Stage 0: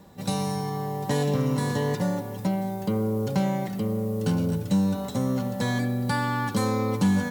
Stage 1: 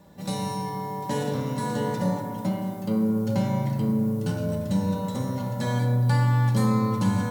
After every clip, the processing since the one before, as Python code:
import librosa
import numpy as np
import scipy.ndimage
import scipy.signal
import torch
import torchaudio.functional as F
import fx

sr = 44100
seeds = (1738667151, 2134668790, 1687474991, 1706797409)

y = fx.rev_fdn(x, sr, rt60_s=2.0, lf_ratio=1.4, hf_ratio=0.3, size_ms=10.0, drr_db=-2.0)
y = y * librosa.db_to_amplitude(-4.0)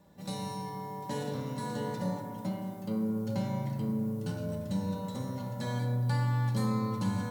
y = fx.dynamic_eq(x, sr, hz=4200.0, q=5.9, threshold_db=-56.0, ratio=4.0, max_db=4)
y = y * librosa.db_to_amplitude(-8.0)